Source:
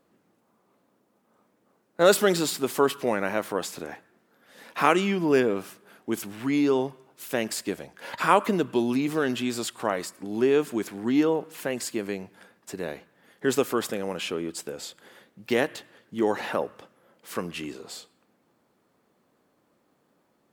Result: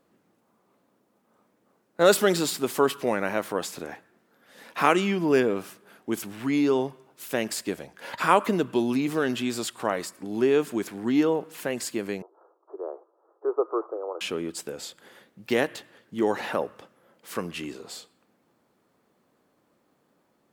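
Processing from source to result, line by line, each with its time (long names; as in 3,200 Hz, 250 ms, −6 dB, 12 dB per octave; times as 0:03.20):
0:12.22–0:14.21: Chebyshev band-pass filter 330–1,300 Hz, order 5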